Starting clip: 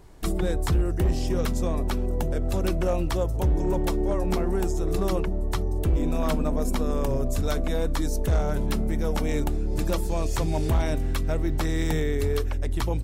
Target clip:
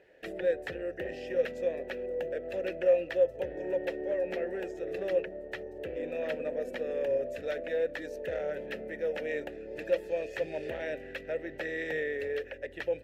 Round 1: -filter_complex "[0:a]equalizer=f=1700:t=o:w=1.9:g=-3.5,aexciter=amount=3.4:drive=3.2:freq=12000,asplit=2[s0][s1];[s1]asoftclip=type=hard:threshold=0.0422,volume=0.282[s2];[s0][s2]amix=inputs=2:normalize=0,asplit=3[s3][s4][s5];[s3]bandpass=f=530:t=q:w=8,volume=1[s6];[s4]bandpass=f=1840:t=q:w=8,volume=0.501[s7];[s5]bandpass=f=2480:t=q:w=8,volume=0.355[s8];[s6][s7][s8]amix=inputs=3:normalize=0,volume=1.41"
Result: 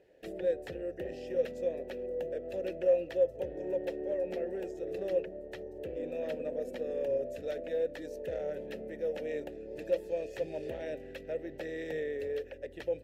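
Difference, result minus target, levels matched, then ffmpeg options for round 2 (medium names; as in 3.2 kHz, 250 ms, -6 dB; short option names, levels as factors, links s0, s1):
2 kHz band -7.5 dB
-filter_complex "[0:a]equalizer=f=1700:t=o:w=1.9:g=7,aexciter=amount=3.4:drive=3.2:freq=12000,asplit=2[s0][s1];[s1]asoftclip=type=hard:threshold=0.0422,volume=0.282[s2];[s0][s2]amix=inputs=2:normalize=0,asplit=3[s3][s4][s5];[s3]bandpass=f=530:t=q:w=8,volume=1[s6];[s4]bandpass=f=1840:t=q:w=8,volume=0.501[s7];[s5]bandpass=f=2480:t=q:w=8,volume=0.355[s8];[s6][s7][s8]amix=inputs=3:normalize=0,volume=1.41"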